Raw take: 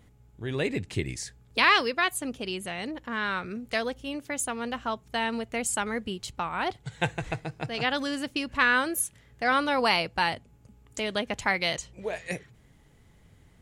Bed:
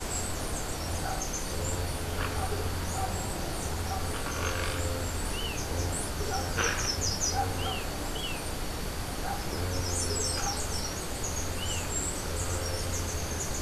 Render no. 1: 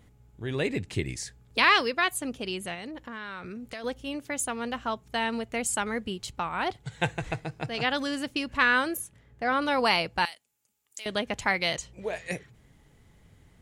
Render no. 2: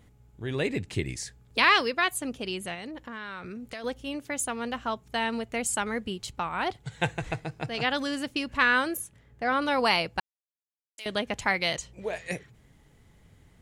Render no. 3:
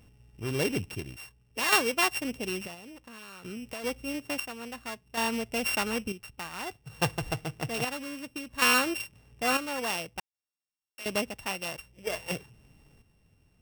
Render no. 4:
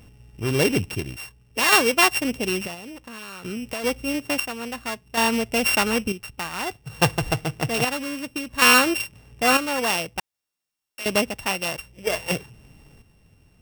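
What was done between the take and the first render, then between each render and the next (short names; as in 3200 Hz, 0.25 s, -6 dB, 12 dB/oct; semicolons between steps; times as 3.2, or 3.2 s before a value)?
2.74–3.84 compressor 5:1, threshold -35 dBFS; 8.97–9.62 high shelf 2000 Hz -9.5 dB; 10.25–11.06 differentiator
10.2–10.98 mute
sample sorter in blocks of 16 samples; chopper 0.58 Hz, depth 60%, duty 55%
gain +8.5 dB; limiter -2 dBFS, peak gain reduction 2.5 dB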